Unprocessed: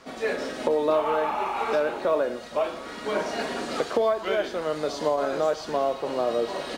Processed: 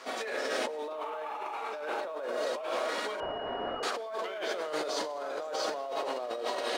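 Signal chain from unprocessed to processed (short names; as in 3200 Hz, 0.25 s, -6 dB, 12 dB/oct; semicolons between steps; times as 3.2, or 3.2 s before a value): split-band echo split 640 Hz, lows 0.252 s, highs 0.1 s, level -10.5 dB; limiter -19 dBFS, peak gain reduction 8 dB; HPF 470 Hz 12 dB/oct; reverb RT60 1.3 s, pre-delay 82 ms, DRR 14 dB; negative-ratio compressor -35 dBFS, ratio -1; 3.2–3.83 pulse-width modulation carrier 2900 Hz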